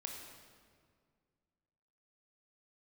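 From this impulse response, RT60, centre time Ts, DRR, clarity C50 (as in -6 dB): 2.0 s, 64 ms, 0.5 dB, 3.0 dB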